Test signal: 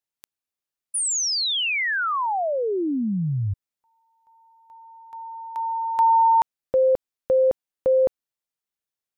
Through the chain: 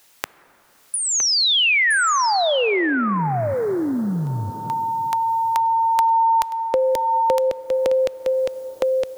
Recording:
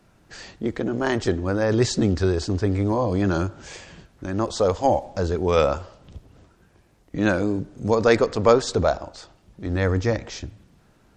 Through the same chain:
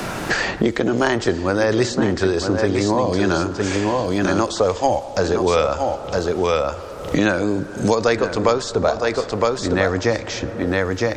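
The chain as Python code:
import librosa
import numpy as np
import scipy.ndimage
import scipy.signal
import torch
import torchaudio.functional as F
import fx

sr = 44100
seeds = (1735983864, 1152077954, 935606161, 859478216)

p1 = fx.low_shelf(x, sr, hz=260.0, db=-9.0)
p2 = p1 + fx.echo_single(p1, sr, ms=962, db=-8.0, dry=0)
p3 = fx.rev_plate(p2, sr, seeds[0], rt60_s=2.8, hf_ratio=0.3, predelay_ms=0, drr_db=18.0)
p4 = fx.band_squash(p3, sr, depth_pct=100)
y = p4 * librosa.db_to_amplitude(5.5)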